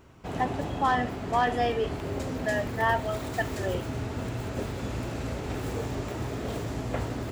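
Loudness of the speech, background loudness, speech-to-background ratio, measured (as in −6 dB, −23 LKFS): −29.5 LKFS, −34.0 LKFS, 4.5 dB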